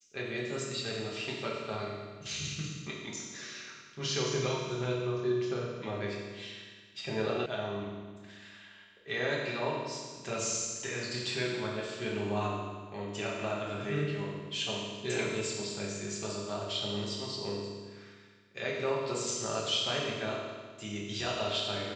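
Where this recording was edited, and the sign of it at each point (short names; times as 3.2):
7.46 sound cut off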